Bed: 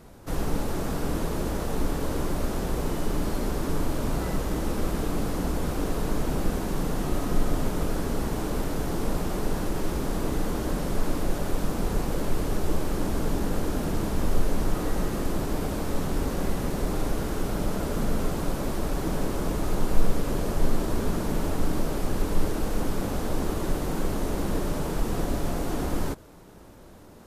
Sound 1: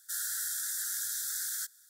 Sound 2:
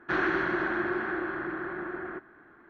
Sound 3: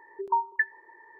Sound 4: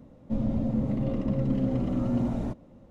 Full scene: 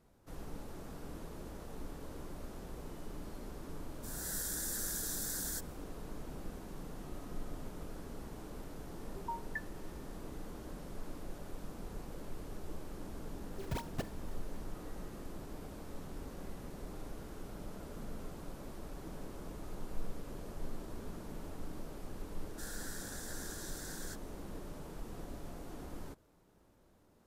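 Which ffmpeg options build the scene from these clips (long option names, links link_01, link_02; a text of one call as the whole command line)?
ffmpeg -i bed.wav -i cue0.wav -i cue1.wav -i cue2.wav -filter_complex "[1:a]asplit=2[link_01][link_02];[3:a]asplit=2[link_03][link_04];[0:a]volume=-18.5dB[link_05];[link_01]dynaudnorm=framelen=110:gausssize=5:maxgain=11dB[link_06];[link_04]acrusher=samples=33:mix=1:aa=0.000001:lfo=1:lforange=52.8:lforate=4[link_07];[link_02]aemphasis=mode=reproduction:type=50kf[link_08];[link_06]atrim=end=1.89,asetpts=PTS-STARTPTS,volume=-15.5dB,afade=type=in:duration=0.004:curve=hsin,afade=type=out:start_time=1.886:duration=0.004:curve=hsin,adelay=3940[link_09];[link_03]atrim=end=1.19,asetpts=PTS-STARTPTS,volume=-16dB,afade=type=in:duration=0.004:curve=hsin,afade=type=out:start_time=1.186:duration=0.004:curve=hsin,adelay=8960[link_10];[link_07]atrim=end=1.19,asetpts=PTS-STARTPTS,volume=-13dB,afade=type=in:duration=0.004:curve=hsin,afade=type=out:start_time=1.186:duration=0.004:curve=hsin,adelay=13390[link_11];[link_08]atrim=end=1.89,asetpts=PTS-STARTPTS,volume=-4.5dB,afade=type=in:duration=0.004:curve=hsin,afade=type=out:start_time=1.886:duration=0.004:curve=hsin,adelay=22490[link_12];[link_05][link_09][link_10][link_11][link_12]amix=inputs=5:normalize=0" out.wav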